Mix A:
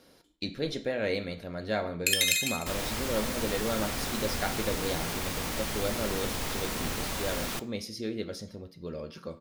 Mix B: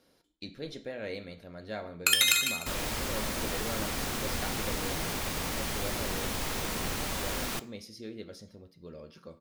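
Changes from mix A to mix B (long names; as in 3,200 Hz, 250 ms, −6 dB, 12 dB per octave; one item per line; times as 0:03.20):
speech −8.0 dB
first sound: remove Chebyshev high-pass with heavy ripple 1,600 Hz, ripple 3 dB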